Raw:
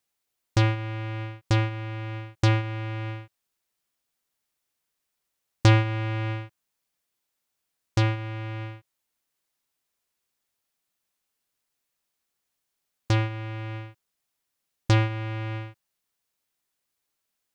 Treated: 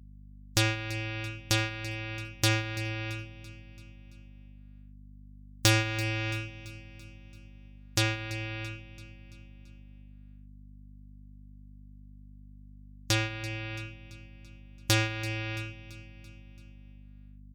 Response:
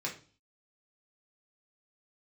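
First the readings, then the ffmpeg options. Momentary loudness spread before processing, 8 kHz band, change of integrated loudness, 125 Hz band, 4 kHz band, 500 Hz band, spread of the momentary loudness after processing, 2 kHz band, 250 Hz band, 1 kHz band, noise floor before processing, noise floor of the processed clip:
14 LU, n/a, -3.5 dB, -7.5 dB, +5.0 dB, -4.0 dB, 21 LU, +2.0 dB, -4.5 dB, -5.5 dB, -81 dBFS, -50 dBFS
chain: -filter_complex "[0:a]aeval=exprs='0.447*(cos(1*acos(clip(val(0)/0.447,-1,1)))-cos(1*PI/2))+0.0398*(cos(5*acos(clip(val(0)/0.447,-1,1)))-cos(5*PI/2))':c=same,aecho=1:1:3.6:0.3,acrossover=split=970[a][b];[b]crystalizer=i=7.5:c=0[c];[a][c]amix=inputs=2:normalize=0,afftdn=nr=31:nf=-42,aeval=exprs='val(0)+0.01*(sin(2*PI*50*n/s)+sin(2*PI*2*50*n/s)/2+sin(2*PI*3*50*n/s)/3+sin(2*PI*4*50*n/s)/4+sin(2*PI*5*50*n/s)/5)':c=same,asplit=2[d][e];[e]aecho=0:1:336|672|1008|1344|1680:0.15|0.0793|0.042|0.0223|0.0118[f];[d][f]amix=inputs=2:normalize=0,volume=-8.5dB"

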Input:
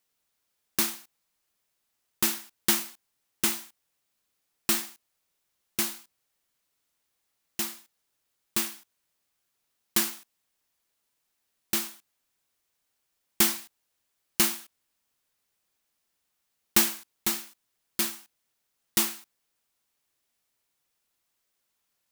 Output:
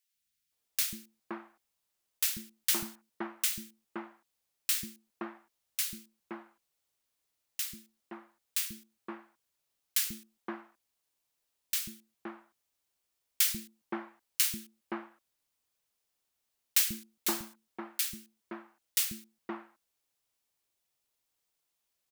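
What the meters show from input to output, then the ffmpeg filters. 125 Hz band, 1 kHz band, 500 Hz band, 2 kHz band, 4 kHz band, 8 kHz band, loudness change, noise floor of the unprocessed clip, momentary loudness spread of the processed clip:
-5.5 dB, -5.5 dB, -5.0 dB, -6.0 dB, -4.5 dB, -4.0 dB, -5.0 dB, -79 dBFS, 19 LU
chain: -filter_complex "[0:a]acrossover=split=220|1600[a][b][c];[a]adelay=140[d];[b]adelay=520[e];[d][e][c]amix=inputs=3:normalize=0,aeval=exprs='0.562*(cos(1*acos(clip(val(0)/0.562,-1,1)))-cos(1*PI/2))+0.00891*(cos(5*acos(clip(val(0)/0.562,-1,1)))-cos(5*PI/2))':c=same,volume=-4.5dB"

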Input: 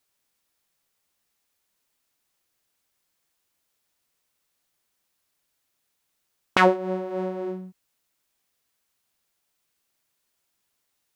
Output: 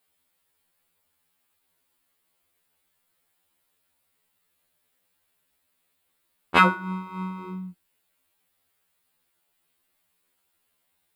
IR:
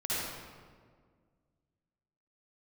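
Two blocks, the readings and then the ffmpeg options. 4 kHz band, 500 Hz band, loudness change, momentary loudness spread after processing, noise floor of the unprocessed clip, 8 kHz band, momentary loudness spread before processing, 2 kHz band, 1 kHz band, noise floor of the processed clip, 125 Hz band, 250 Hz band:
+1.0 dB, -9.5 dB, +1.0 dB, 19 LU, -76 dBFS, n/a, 14 LU, +3.0 dB, +1.5 dB, -74 dBFS, +3.0 dB, -0.5 dB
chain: -af "equalizer=f=6k:w=2.3:g=-11.5,bandreject=f=113.1:t=h:w=4,bandreject=f=226.2:t=h:w=4,bandreject=f=339.3:t=h:w=4,bandreject=f=452.4:t=h:w=4,bandreject=f=565.5:t=h:w=4,bandreject=f=678.6:t=h:w=4,bandreject=f=791.7:t=h:w=4,bandreject=f=904.8:t=h:w=4,bandreject=f=1.0179k:t=h:w=4,bandreject=f=1.131k:t=h:w=4,bandreject=f=1.2441k:t=h:w=4,bandreject=f=1.3572k:t=h:w=4,bandreject=f=1.4703k:t=h:w=4,bandreject=f=1.5834k:t=h:w=4,bandreject=f=1.6965k:t=h:w=4,bandreject=f=1.8096k:t=h:w=4,afftfilt=real='re*2*eq(mod(b,4),0)':imag='im*2*eq(mod(b,4),0)':win_size=2048:overlap=0.75,volume=6dB"

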